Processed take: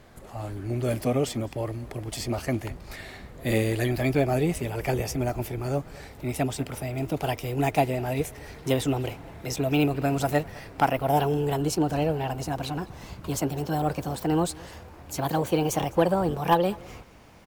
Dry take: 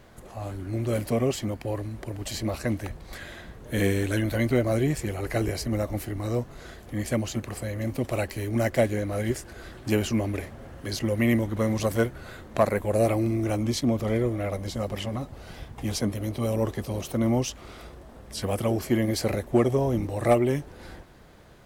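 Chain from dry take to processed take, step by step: gliding tape speed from 104% -> 144%; delay 206 ms -23.5 dB

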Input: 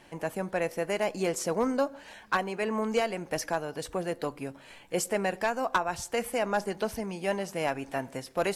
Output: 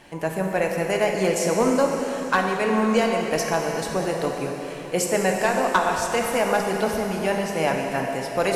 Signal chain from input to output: plate-style reverb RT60 3.8 s, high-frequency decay 0.95×, DRR 1 dB; trim +5.5 dB

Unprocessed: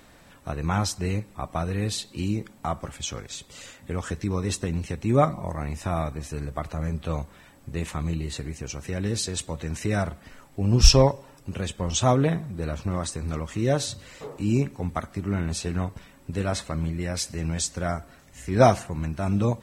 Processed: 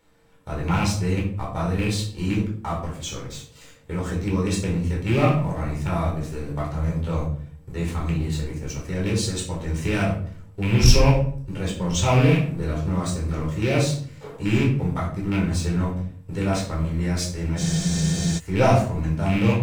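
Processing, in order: rattle on loud lows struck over -24 dBFS, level -18 dBFS; whistle 460 Hz -56 dBFS; waveshaping leveller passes 2; simulated room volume 570 m³, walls furnished, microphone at 4.4 m; spectral freeze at 17.61 s, 0.78 s; trim -12 dB

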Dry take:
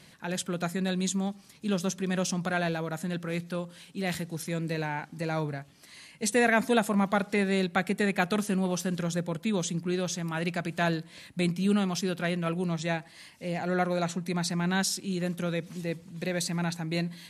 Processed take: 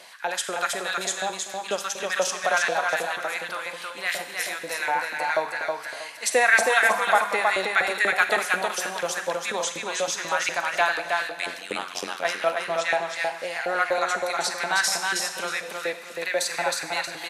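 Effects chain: Schroeder reverb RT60 1 s, combs from 32 ms, DRR 8.5 dB; in parallel at -1 dB: compression, threshold -34 dBFS, peak gain reduction 15.5 dB; 11.28–12.25 s: on the sum: AM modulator 91 Hz, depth 100%; LFO high-pass saw up 4.1 Hz 550–2000 Hz; on a send: feedback delay 318 ms, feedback 25%, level -3.5 dB; on the sum: trim +2 dB

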